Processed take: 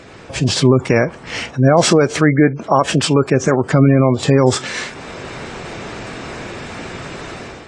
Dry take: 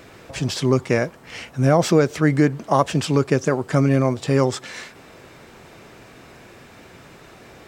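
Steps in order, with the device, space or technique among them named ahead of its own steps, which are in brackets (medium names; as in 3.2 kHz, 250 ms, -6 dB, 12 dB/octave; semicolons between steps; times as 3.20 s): spectral gate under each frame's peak -30 dB strong; 1.51–3.32 s: bass shelf 280 Hz -5.5 dB; low-bitrate web radio (level rider gain up to 10 dB; peak limiter -7 dBFS, peak gain reduction 6 dB; trim +5 dB; AAC 32 kbps 22.05 kHz)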